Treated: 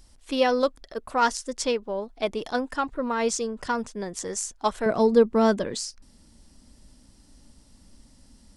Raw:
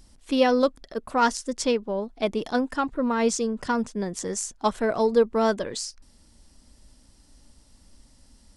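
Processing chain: peaking EQ 200 Hz -6 dB 1.6 oct, from 4.86 s +5 dB

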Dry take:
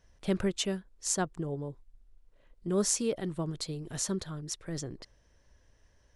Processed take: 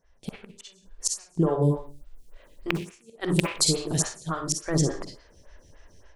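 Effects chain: rattle on loud lows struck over -33 dBFS, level -21 dBFS; inverted gate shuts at -20 dBFS, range -42 dB; 1.62–3.83 s: treble shelf 3.1 kHz +9.5 dB; level rider gain up to 14 dB; reverberation RT60 0.45 s, pre-delay 44 ms, DRR 3.5 dB; dynamic bell 1.1 kHz, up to +7 dB, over -44 dBFS, Q 1.1; lamp-driven phase shifter 3.5 Hz

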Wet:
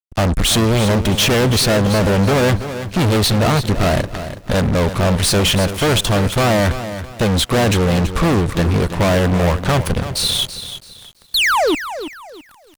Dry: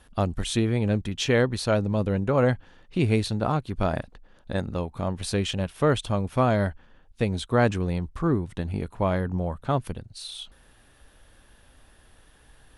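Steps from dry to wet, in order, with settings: painted sound fall, 11.34–11.75 s, 270–4600 Hz -32 dBFS; fuzz box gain 39 dB, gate -45 dBFS; bit-crushed delay 331 ms, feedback 35%, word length 7-bit, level -11 dB

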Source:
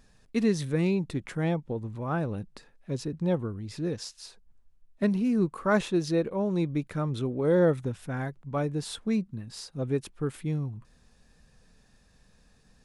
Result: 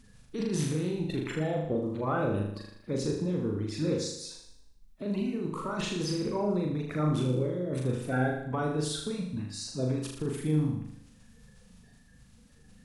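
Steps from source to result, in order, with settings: coarse spectral quantiser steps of 30 dB; compressor with a negative ratio -30 dBFS, ratio -1; flutter echo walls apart 6.7 m, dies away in 0.74 s; trim -1.5 dB

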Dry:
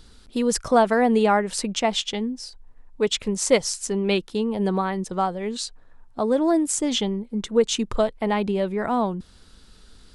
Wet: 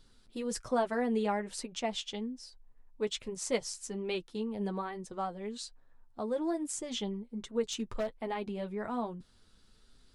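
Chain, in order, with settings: flange 1.2 Hz, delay 7.2 ms, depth 2.9 ms, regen -29%; 7.65–8.22 s: hard clipper -19 dBFS, distortion -24 dB; trim -9 dB

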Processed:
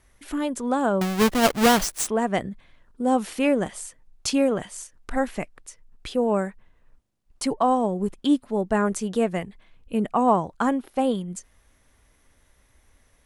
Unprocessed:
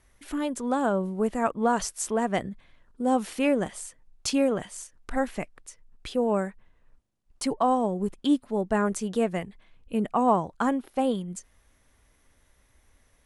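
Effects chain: 1.01–2.07 s: square wave that keeps the level; trim +2.5 dB

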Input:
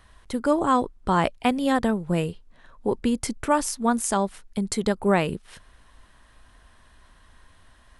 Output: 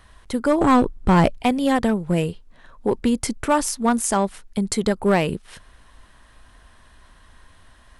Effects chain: 0.61–1.42 s: bass shelf 450 Hz +9.5 dB; in parallel at -5.5 dB: wavefolder -16 dBFS

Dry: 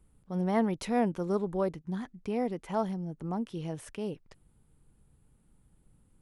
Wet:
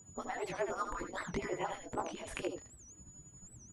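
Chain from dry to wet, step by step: harmonic-percussive separation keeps percussive; treble shelf 4.6 kHz -11.5 dB; compression 6:1, threshold -47 dBFS, peak gain reduction 15 dB; chorus 2.2 Hz, delay 17 ms, depth 6.4 ms; whistle 6.9 kHz -70 dBFS; granular stretch 0.6×, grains 182 ms; delay 77 ms -7.5 dB; warped record 78 rpm, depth 250 cents; trim +16 dB

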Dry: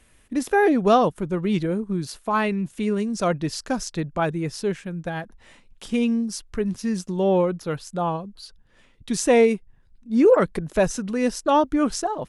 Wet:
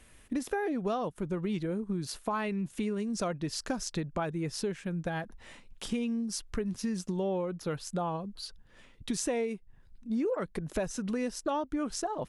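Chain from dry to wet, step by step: compression 6:1, threshold -30 dBFS, peak gain reduction 17.5 dB

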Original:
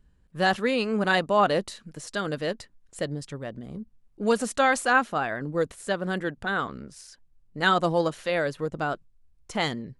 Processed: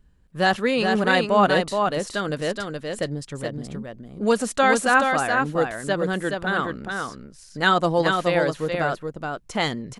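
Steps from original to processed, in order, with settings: delay 423 ms -4.5 dB; trim +3 dB

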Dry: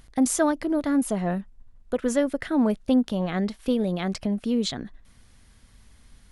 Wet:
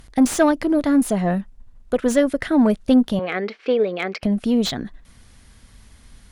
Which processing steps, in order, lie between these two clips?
Chebyshev shaper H 5 -33 dB, 6 -28 dB, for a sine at -9.5 dBFS; 3.19–4.23 s: cabinet simulation 400–4500 Hz, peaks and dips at 440 Hz +10 dB, 630 Hz -3 dB, 950 Hz -5 dB, 1.4 kHz +3 dB, 2.3 kHz +8 dB, 3.6 kHz -5 dB; slew-rate limiter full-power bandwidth 200 Hz; trim +5.5 dB

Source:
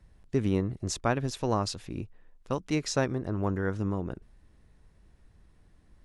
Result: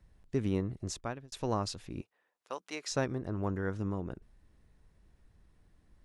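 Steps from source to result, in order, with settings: 0.82–1.32 s: fade out; 2.01–2.92 s: high-pass 590 Hz 12 dB/octave; trim -4.5 dB

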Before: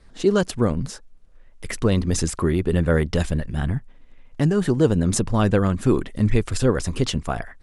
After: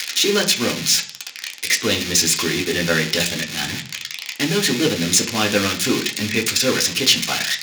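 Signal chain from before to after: zero-crossing glitches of -12.5 dBFS; frequency weighting D; reverberation RT60 0.40 s, pre-delay 3 ms, DRR 0 dB; trim -5.5 dB

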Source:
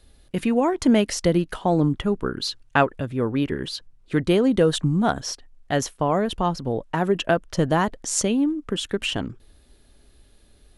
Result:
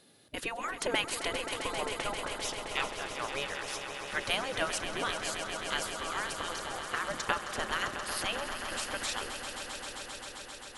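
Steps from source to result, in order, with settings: spectral gate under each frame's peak -15 dB weak; echo with a slow build-up 132 ms, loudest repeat 5, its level -11 dB

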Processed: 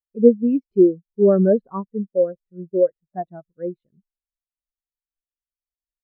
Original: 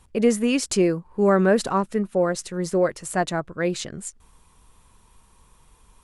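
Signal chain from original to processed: low-pass 2.6 kHz 12 dB/octave; spectral contrast expander 2.5:1; trim +5.5 dB

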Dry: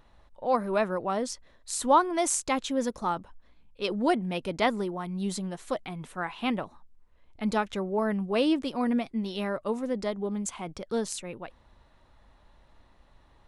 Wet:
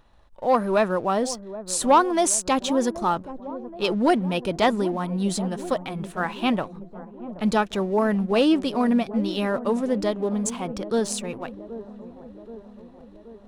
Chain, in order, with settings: band-stop 2.1 kHz, Q 12; waveshaping leveller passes 1; feedback echo behind a low-pass 777 ms, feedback 60%, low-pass 740 Hz, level -13 dB; trim +2.5 dB

